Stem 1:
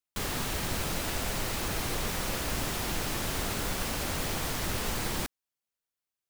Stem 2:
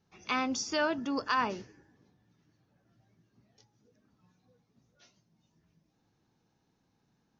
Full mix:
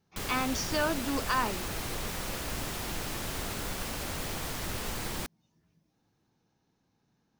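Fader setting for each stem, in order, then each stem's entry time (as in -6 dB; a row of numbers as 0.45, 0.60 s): -3.5, 0.0 dB; 0.00, 0.00 s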